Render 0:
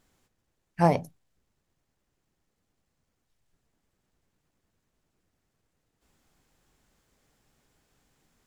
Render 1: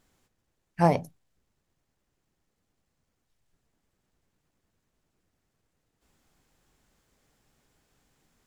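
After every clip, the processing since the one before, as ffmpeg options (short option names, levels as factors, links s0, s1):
-af anull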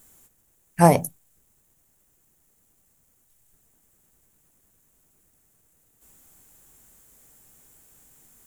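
-af "aexciter=amount=6.3:drive=5.1:freq=6800,volume=2.11"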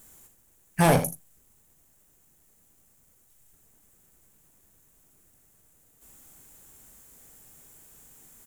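-filter_complex "[0:a]asoftclip=type=hard:threshold=0.141,asplit=2[s0][s1];[s1]aecho=0:1:38|79:0.282|0.299[s2];[s0][s2]amix=inputs=2:normalize=0,volume=1.19"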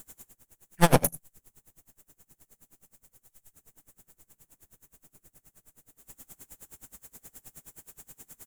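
-af "aeval=exprs='clip(val(0),-1,0.0211)':c=same,aeval=exprs='val(0)*pow(10,-28*(0.5-0.5*cos(2*PI*9.5*n/s))/20)':c=same,volume=2.66"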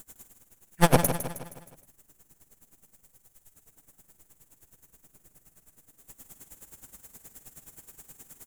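-af "aecho=1:1:157|314|471|628|785:0.316|0.152|0.0729|0.035|0.0168"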